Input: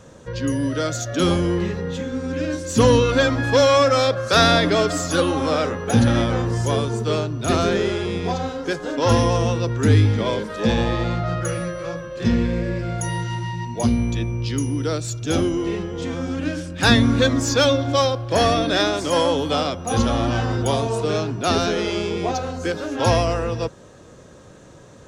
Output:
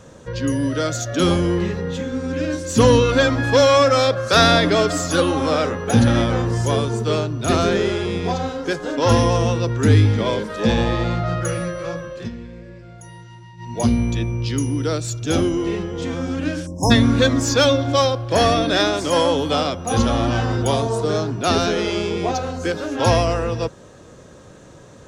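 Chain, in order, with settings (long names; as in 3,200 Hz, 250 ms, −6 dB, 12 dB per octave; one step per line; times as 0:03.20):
0:12.10–0:13.77: duck −16.5 dB, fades 0.20 s
0:16.67–0:16.91: time-frequency box erased 1,100–5,100 Hz
0:20.82–0:21.32: parametric band 2,600 Hz −10 dB 0.41 octaves
level +1.5 dB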